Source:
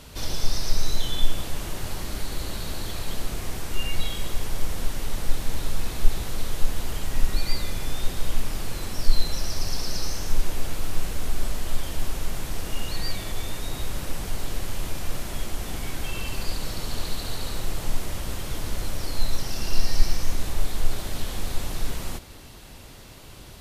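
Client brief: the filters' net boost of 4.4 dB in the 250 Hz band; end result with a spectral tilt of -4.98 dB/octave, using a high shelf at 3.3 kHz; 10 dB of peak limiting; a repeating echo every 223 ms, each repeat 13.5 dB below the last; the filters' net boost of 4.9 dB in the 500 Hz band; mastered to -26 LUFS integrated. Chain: peaking EQ 250 Hz +4.5 dB; peaking EQ 500 Hz +5 dB; treble shelf 3.3 kHz -7 dB; peak limiter -12.5 dBFS; feedback delay 223 ms, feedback 21%, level -13.5 dB; trim +7 dB

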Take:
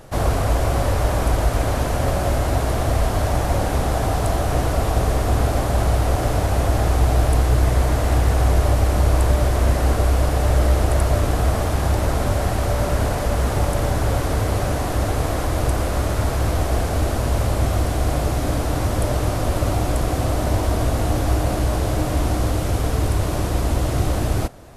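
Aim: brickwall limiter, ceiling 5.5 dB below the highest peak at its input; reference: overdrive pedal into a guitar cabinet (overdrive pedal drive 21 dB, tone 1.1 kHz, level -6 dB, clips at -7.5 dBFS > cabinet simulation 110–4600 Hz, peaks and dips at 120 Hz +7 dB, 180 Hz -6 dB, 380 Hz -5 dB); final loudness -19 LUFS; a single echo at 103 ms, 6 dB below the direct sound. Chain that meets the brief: peak limiter -11 dBFS; delay 103 ms -6 dB; overdrive pedal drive 21 dB, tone 1.1 kHz, level -6 dB, clips at -7.5 dBFS; cabinet simulation 110–4600 Hz, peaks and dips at 120 Hz +7 dB, 180 Hz -6 dB, 380 Hz -5 dB; trim +0.5 dB

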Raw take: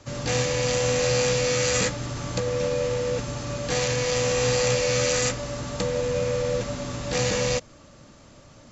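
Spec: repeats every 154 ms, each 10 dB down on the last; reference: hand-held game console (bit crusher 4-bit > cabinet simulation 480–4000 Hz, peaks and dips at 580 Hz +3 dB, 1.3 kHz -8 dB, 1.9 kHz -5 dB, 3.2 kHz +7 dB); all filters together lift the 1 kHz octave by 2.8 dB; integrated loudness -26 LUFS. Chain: peaking EQ 1 kHz +6.5 dB; feedback delay 154 ms, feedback 32%, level -10 dB; bit crusher 4-bit; cabinet simulation 480–4000 Hz, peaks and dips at 580 Hz +3 dB, 1.3 kHz -8 dB, 1.9 kHz -5 dB, 3.2 kHz +7 dB; trim -1.5 dB

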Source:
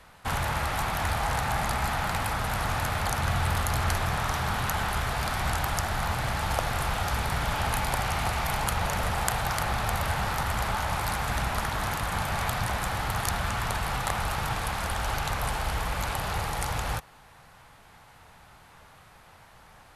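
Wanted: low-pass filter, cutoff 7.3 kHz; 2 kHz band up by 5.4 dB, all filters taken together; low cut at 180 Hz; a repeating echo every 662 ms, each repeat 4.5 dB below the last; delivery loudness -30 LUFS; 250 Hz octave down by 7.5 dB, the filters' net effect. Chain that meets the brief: high-pass 180 Hz; low-pass 7.3 kHz; peaking EQ 250 Hz -8 dB; peaking EQ 2 kHz +7 dB; feedback delay 662 ms, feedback 60%, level -4.5 dB; trim -4 dB

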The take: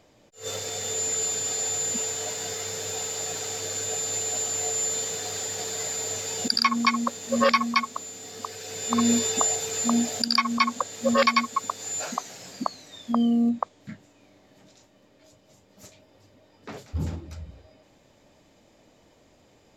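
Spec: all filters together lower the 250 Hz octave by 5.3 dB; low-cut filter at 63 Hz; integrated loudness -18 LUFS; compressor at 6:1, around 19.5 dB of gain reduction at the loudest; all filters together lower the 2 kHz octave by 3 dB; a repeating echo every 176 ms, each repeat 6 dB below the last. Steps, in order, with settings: high-pass 63 Hz; peaking EQ 250 Hz -5.5 dB; peaking EQ 2 kHz -3.5 dB; compression 6:1, threshold -40 dBFS; feedback delay 176 ms, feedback 50%, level -6 dB; trim +21.5 dB

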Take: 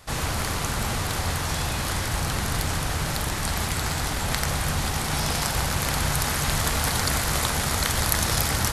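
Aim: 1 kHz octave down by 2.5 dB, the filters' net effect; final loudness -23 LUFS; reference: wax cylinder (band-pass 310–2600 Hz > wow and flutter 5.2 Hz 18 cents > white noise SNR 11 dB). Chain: band-pass 310–2600 Hz; peaking EQ 1 kHz -3 dB; wow and flutter 5.2 Hz 18 cents; white noise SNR 11 dB; trim +8 dB

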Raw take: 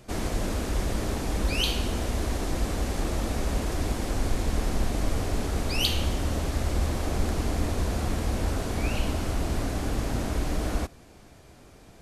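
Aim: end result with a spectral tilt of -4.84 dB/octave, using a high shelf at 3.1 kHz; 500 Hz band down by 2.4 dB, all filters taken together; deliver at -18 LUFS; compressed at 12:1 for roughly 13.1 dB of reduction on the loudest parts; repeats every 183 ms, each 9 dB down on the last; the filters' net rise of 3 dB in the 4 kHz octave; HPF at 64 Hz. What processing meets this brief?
high-pass 64 Hz; peaking EQ 500 Hz -3 dB; treble shelf 3.1 kHz -6 dB; peaking EQ 4 kHz +8.5 dB; compression 12:1, threshold -32 dBFS; feedback delay 183 ms, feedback 35%, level -9 dB; trim +18 dB

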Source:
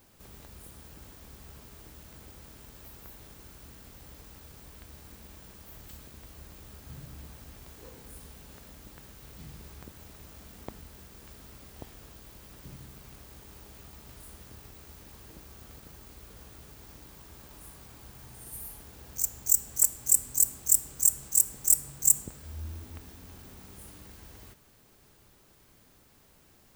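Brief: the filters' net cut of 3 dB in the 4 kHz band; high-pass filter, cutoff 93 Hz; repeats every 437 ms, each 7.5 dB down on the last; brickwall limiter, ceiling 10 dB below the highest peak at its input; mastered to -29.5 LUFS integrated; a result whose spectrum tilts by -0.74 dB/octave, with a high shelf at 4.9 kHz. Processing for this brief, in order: high-pass 93 Hz; peaking EQ 4 kHz -9 dB; treble shelf 4.9 kHz +6 dB; peak limiter -9.5 dBFS; feedback delay 437 ms, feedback 42%, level -7.5 dB; trim -1 dB

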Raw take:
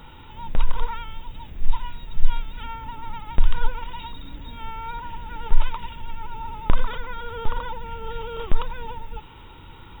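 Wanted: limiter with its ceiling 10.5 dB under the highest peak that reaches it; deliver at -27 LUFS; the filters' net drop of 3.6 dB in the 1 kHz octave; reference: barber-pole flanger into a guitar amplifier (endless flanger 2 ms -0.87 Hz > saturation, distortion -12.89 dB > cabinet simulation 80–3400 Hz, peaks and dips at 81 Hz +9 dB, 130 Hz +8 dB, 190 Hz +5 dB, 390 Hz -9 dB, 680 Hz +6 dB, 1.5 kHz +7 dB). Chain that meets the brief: peaking EQ 1 kHz -6.5 dB; peak limiter -12 dBFS; endless flanger 2 ms -0.87 Hz; saturation -17.5 dBFS; cabinet simulation 80–3400 Hz, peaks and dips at 81 Hz +9 dB, 130 Hz +8 dB, 190 Hz +5 dB, 390 Hz -9 dB, 680 Hz +6 dB, 1.5 kHz +7 dB; trim +14 dB

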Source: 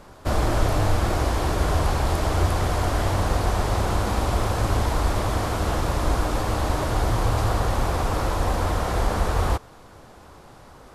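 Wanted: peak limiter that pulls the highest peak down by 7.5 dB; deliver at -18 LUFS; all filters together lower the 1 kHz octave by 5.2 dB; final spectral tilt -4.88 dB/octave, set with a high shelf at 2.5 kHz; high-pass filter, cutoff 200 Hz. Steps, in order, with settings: high-pass 200 Hz; peaking EQ 1 kHz -6 dB; treble shelf 2.5 kHz -5.5 dB; trim +14.5 dB; peak limiter -8.5 dBFS

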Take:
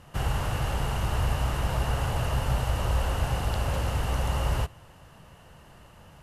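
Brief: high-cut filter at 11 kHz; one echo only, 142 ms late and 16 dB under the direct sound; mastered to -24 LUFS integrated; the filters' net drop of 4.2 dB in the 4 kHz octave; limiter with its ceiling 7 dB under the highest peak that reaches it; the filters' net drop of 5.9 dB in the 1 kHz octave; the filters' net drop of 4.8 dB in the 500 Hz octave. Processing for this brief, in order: low-pass 11 kHz; peaking EQ 500 Hz -4 dB; peaking EQ 1 kHz -6 dB; peaking EQ 4 kHz -6 dB; peak limiter -22 dBFS; delay 142 ms -16 dB; trim +8 dB

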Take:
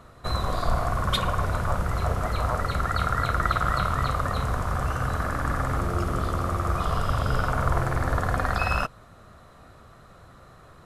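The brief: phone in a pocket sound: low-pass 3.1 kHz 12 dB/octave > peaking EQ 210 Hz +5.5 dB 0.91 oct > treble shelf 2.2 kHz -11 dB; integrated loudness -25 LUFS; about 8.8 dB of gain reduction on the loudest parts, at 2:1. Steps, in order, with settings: compression 2:1, threshold -35 dBFS; low-pass 3.1 kHz 12 dB/octave; peaking EQ 210 Hz +5.5 dB 0.91 oct; treble shelf 2.2 kHz -11 dB; trim +9.5 dB

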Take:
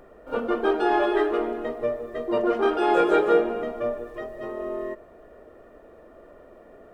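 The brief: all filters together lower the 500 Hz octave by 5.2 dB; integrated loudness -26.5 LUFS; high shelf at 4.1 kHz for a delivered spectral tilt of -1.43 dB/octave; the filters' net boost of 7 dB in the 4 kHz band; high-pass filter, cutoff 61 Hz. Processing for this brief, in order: high-pass 61 Hz; peaking EQ 500 Hz -7 dB; peaking EQ 4 kHz +7.5 dB; treble shelf 4.1 kHz +4 dB; trim +1 dB

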